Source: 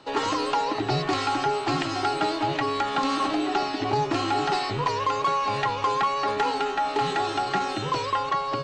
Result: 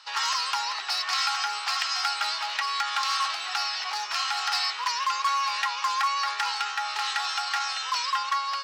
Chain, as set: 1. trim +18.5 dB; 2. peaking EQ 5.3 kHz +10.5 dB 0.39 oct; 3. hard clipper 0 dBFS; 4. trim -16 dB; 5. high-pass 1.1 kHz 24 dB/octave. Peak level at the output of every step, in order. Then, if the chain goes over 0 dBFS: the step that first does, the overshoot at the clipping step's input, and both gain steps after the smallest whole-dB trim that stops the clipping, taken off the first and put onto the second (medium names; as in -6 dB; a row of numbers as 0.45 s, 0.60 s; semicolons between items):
+6.0 dBFS, +6.5 dBFS, 0.0 dBFS, -16.0 dBFS, -13.0 dBFS; step 1, 6.5 dB; step 1 +11.5 dB, step 4 -9 dB